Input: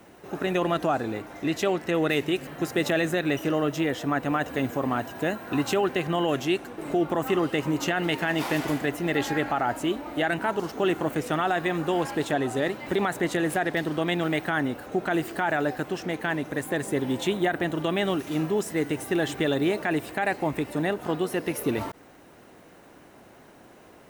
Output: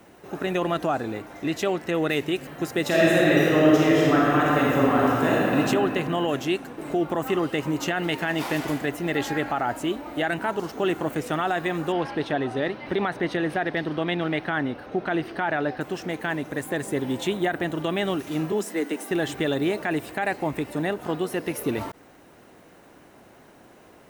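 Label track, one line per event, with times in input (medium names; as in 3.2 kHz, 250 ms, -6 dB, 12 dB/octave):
2.860000	5.570000	reverb throw, RT60 2.8 s, DRR -6 dB
11.920000	15.810000	Savitzky-Golay filter over 15 samples
18.520000	19.110000	steep high-pass 180 Hz 72 dB/octave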